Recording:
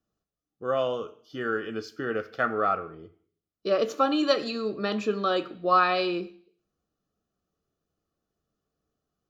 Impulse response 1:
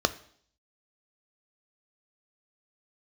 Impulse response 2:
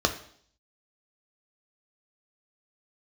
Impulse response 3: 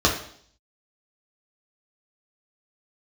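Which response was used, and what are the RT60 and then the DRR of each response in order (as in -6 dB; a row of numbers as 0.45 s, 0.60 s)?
1; 0.60 s, 0.60 s, 0.60 s; 11.0 dB, 4.5 dB, -2.5 dB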